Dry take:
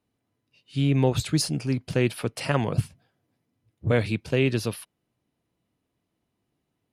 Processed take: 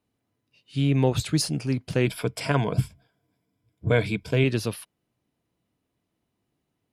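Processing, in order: 2.05–4.44 ripple EQ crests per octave 1.7, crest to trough 9 dB

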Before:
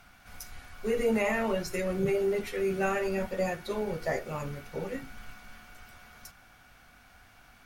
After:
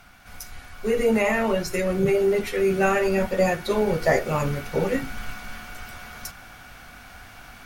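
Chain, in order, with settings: vocal rider within 4 dB 2 s; gain +8.5 dB

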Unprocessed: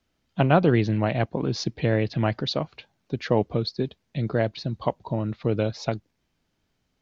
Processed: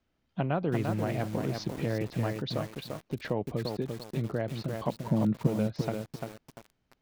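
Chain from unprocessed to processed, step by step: high shelf 4000 Hz -10 dB; compressor 2:1, threshold -29 dBFS, peak gain reduction 9.5 dB; 4.88–5.47 bell 200 Hz +11.5 dB 1.2 oct; lo-fi delay 0.345 s, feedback 35%, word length 7-bit, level -4 dB; gain -2.5 dB

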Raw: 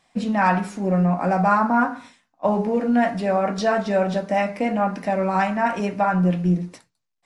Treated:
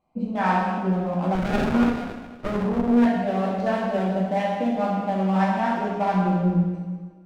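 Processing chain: Wiener smoothing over 25 samples; plate-style reverb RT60 1.5 s, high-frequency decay 0.95×, DRR -4.5 dB; 1.35–3.06 running maximum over 33 samples; gain -6.5 dB

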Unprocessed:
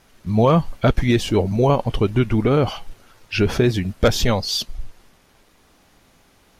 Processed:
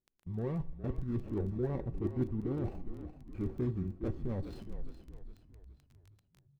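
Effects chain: median filter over 41 samples; reverse; compressor 5:1, threshold -28 dBFS, peak gain reduction 14.5 dB; reverse; gate -47 dBFS, range -26 dB; tilt shelf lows +7.5 dB, about 1500 Hz; notch 640 Hz, Q 12; resonator 380 Hz, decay 0.22 s, harmonics odd, mix 80%; frequency-shifting echo 0.413 s, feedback 45%, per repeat -38 Hz, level -11 dB; on a send at -18.5 dB: reverb RT60 0.70 s, pre-delay 43 ms; on the sum: formant shift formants -2 st; crackle 13/s -45 dBFS; high shelf 7400 Hz -4.5 dB

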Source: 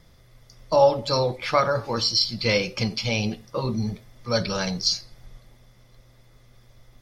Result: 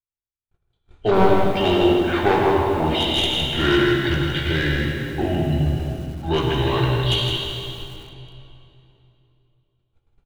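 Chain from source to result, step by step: one-sided fold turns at -17 dBFS; gate -45 dBFS, range -56 dB; LPF 3000 Hz 6 dB/oct; wide varispeed 0.684×; in parallel at -3.5 dB: soft clip -22 dBFS, distortion -9 dB; on the sum: doubler 17 ms -8.5 dB; echo 0.161 s -6 dB; on a send at -2 dB: reverb RT60 3.0 s, pre-delay 41 ms; on the sum: lo-fi delay 96 ms, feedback 55%, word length 6-bit, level -13 dB

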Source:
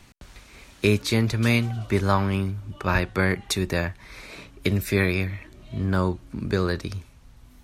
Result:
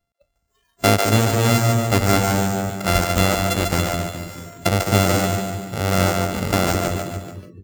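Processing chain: sample sorter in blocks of 64 samples; split-band echo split 410 Hz, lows 0.21 s, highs 0.145 s, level -3.5 dB; spectral noise reduction 30 dB; gain +4 dB

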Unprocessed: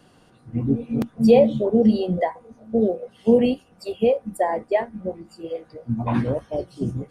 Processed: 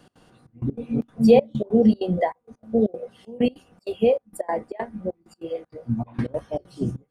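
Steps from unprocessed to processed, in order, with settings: step gate "x.xxxx..x.xx" 194 bpm -24 dB

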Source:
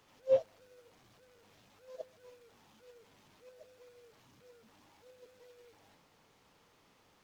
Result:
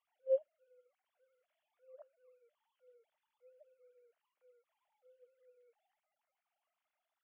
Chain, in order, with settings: sine-wave speech; dynamic EQ 890 Hz, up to -5 dB, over -48 dBFS, Q 0.78; gain -1.5 dB; MP3 16 kbps 12000 Hz

